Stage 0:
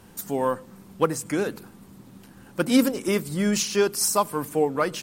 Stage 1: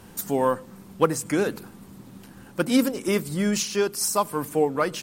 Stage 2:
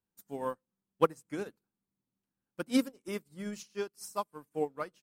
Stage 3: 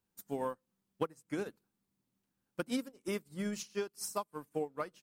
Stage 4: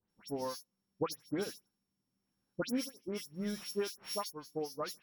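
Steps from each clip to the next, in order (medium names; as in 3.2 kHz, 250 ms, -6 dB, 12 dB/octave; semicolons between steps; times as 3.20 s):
gain riding within 4 dB 0.5 s
upward expansion 2.5:1, over -41 dBFS; trim -4.5 dB
compression 10:1, threshold -37 dBFS, peak gain reduction 18.5 dB; trim +5 dB
sorted samples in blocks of 8 samples; tremolo 0.79 Hz, depth 39%; phase dispersion highs, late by 102 ms, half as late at 2.6 kHz; trim +1.5 dB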